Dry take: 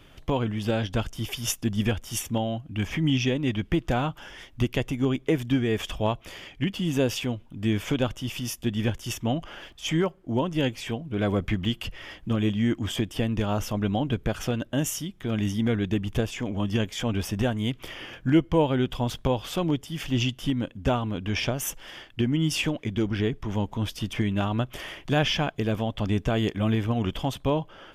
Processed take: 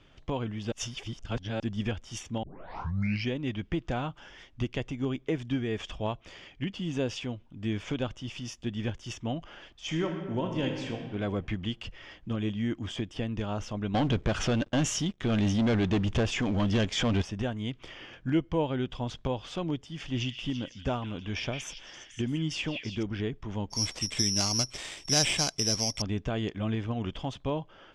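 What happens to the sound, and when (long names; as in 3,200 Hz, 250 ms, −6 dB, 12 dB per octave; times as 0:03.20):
0:00.72–0:01.60: reverse
0:02.43: tape start 0.88 s
0:09.73–0:10.99: thrown reverb, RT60 1.5 s, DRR 3 dB
0:13.94–0:17.22: leveller curve on the samples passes 3
0:19.86–0:23.03: echo through a band-pass that steps 168 ms, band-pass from 2,600 Hz, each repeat 0.7 octaves, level −4 dB
0:23.70–0:26.02: bad sample-rate conversion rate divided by 8×, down none, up zero stuff
whole clip: low-pass filter 6,900 Hz 24 dB per octave; level −6.5 dB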